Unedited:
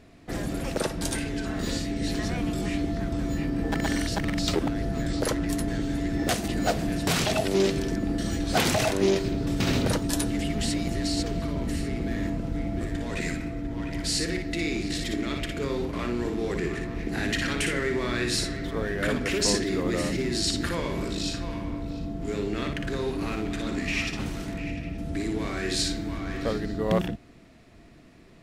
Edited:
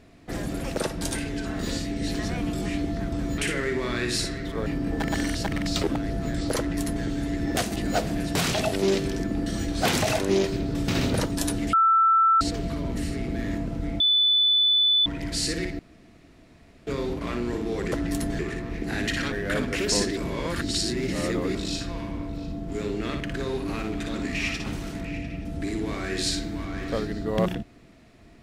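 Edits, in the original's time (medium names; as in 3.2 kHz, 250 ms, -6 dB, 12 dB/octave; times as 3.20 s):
5.30–5.77 s: copy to 16.64 s
10.45–11.13 s: bleep 1.33 kHz -15.5 dBFS
12.72–13.78 s: bleep 3.49 kHz -17 dBFS
14.51–15.59 s: room tone
17.57–18.85 s: move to 3.38 s
19.70–21.08 s: reverse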